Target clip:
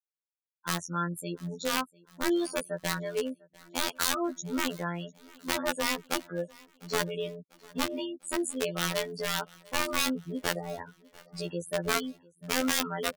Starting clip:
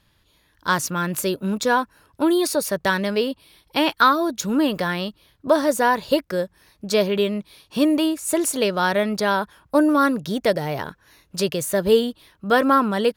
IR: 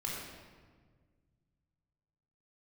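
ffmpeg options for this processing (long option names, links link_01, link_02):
-filter_complex "[0:a]afftfilt=real='re*gte(hypot(re,im),0.0891)':imag='im*gte(hypot(re,im),0.0891)':win_size=1024:overlap=0.75,adynamicequalizer=threshold=0.0112:dfrequency=1300:dqfactor=6.5:tfrequency=1300:tqfactor=6.5:attack=5:release=100:ratio=0.375:range=3.5:mode=boostabove:tftype=bell,aeval=exprs='(mod(3.98*val(0)+1,2)-1)/3.98':channel_layout=same,afftfilt=real='hypot(re,im)*cos(PI*b)':imag='0':win_size=2048:overlap=0.75,asplit=2[link_01][link_02];[link_02]aecho=0:1:698|1396|2094:0.0631|0.0341|0.0184[link_03];[link_01][link_03]amix=inputs=2:normalize=0,volume=-7dB"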